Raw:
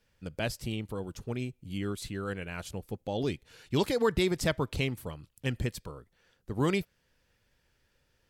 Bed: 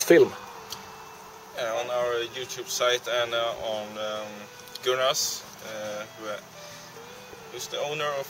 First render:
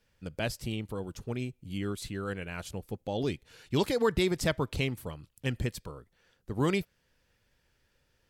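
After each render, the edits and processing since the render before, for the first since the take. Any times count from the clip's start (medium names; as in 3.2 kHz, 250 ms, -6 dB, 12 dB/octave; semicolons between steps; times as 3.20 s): no audible change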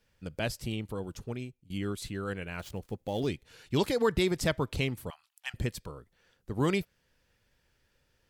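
1.20–1.70 s: fade out, to -18.5 dB; 2.59–3.27 s: dead-time distortion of 0.055 ms; 5.10–5.54 s: elliptic high-pass 730 Hz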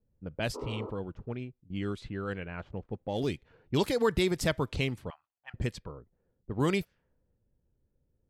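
level-controlled noise filter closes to 360 Hz, open at -27 dBFS; 0.57–0.88 s: spectral replace 230–1500 Hz after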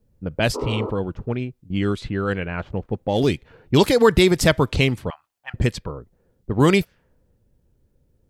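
trim +12 dB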